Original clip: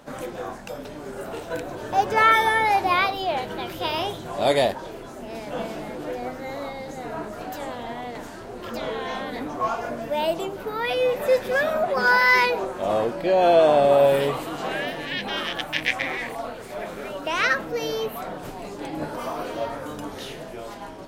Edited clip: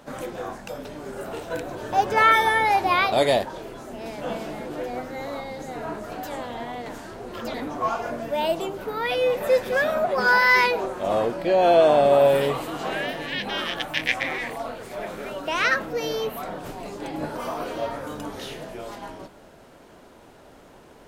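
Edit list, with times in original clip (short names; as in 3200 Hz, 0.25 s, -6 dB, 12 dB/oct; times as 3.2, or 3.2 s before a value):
3.12–4.41 cut
8.83–9.33 cut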